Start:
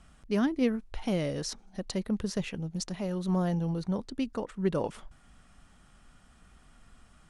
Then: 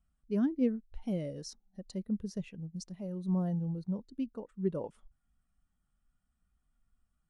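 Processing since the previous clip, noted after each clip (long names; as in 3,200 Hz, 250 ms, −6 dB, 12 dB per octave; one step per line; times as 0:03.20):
high-shelf EQ 7,900 Hz +11 dB
every bin expanded away from the loudest bin 1.5 to 1
level −4 dB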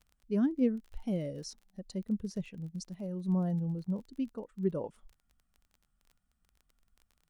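surface crackle 25 per second −48 dBFS
level +1 dB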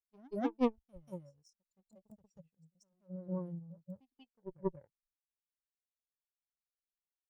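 harmonic generator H 3 −12 dB, 4 −39 dB, 6 −43 dB, 7 −31 dB, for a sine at −17.5 dBFS
backwards echo 186 ms −7.5 dB
noise reduction from a noise print of the clip's start 18 dB
level +1 dB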